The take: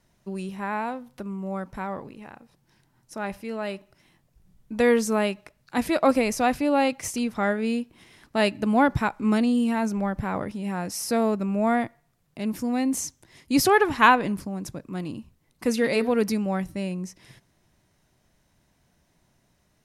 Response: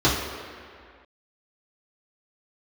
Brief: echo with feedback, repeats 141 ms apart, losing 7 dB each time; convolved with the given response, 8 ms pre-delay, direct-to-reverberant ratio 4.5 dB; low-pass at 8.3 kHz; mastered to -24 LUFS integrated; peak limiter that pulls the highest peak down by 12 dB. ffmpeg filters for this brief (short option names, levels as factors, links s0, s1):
-filter_complex "[0:a]lowpass=8300,alimiter=limit=0.188:level=0:latency=1,aecho=1:1:141|282|423|564|705:0.447|0.201|0.0905|0.0407|0.0183,asplit=2[s0][s1];[1:a]atrim=start_sample=2205,adelay=8[s2];[s1][s2]afir=irnorm=-1:irlink=0,volume=0.0668[s3];[s0][s3]amix=inputs=2:normalize=0"